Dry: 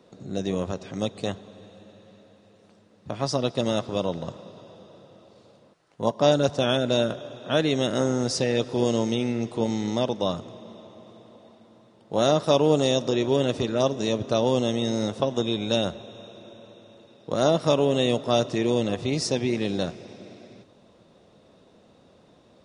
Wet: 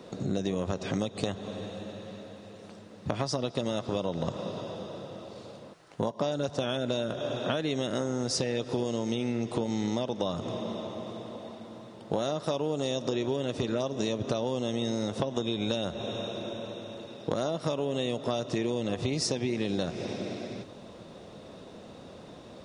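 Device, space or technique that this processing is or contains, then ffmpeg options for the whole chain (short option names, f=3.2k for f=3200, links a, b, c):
serial compression, peaks first: -af "acompressor=threshold=-30dB:ratio=6,acompressor=threshold=-37dB:ratio=2.5,volume=9dB"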